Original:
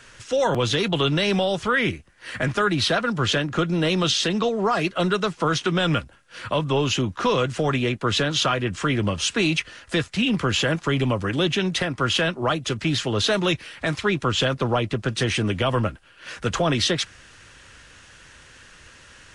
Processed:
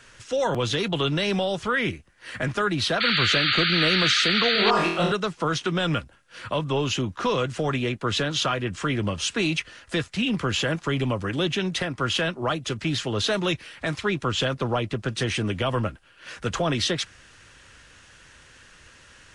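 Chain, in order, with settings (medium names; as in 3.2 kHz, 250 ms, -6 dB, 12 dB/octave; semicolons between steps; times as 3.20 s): 4.53–5.12 s: flutter echo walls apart 4.1 m, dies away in 0.65 s; 3.00–4.71 s: painted sound noise 1.2–4.7 kHz -20 dBFS; trim -3 dB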